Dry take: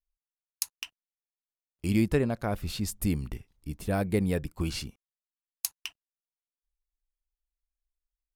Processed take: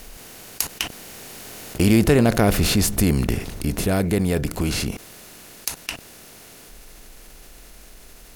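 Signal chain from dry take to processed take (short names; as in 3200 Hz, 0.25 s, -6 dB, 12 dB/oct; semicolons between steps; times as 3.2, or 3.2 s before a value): per-bin compression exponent 0.6; Doppler pass-by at 2.23, 9 m/s, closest 5.9 m; fast leveller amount 50%; gain +7 dB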